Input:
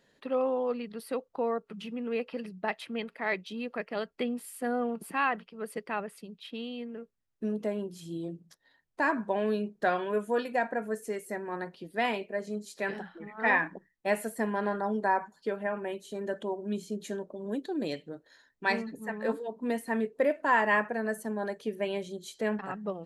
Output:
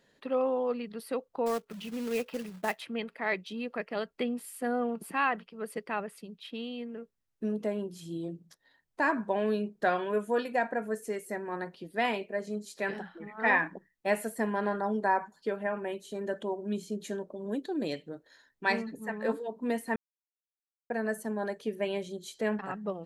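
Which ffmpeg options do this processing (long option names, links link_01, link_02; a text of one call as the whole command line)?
ffmpeg -i in.wav -filter_complex "[0:a]asettb=1/sr,asplit=3[link_01][link_02][link_03];[link_01]atrim=end=1.464[link_04];[link_02]atrim=start=1.46:end=2.8,asetpts=PTS-STARTPTS,afade=type=in:duration=0.004:curve=qsin,afade=type=out:start_time=1.336:duration=0.004:curve=qsin,acrusher=bits=3:mode=log:mix=0:aa=0.000001[link_05];[link_03]atrim=start=2.796[link_06];[link_04][link_05]acrossfade=duration=0.004:curve1=hsin:curve2=qsin[link_07];[link_07][link_06]acrossfade=duration=0.004:curve1=qsin:curve2=hsin,asplit=3[link_08][link_09][link_10];[link_08]atrim=end=19.96,asetpts=PTS-STARTPTS,afade=type=out:start_time=19.956:duration=0.004:curve=hsin[link_11];[link_09]atrim=start=19.96:end=20.9,asetpts=PTS-STARTPTS,volume=0[link_12];[link_10]atrim=start=20.9,asetpts=PTS-STARTPTS,afade=type=in:duration=0.004:curve=hsin[link_13];[link_11][link_12][link_13]concat=n=3:v=0:a=1" out.wav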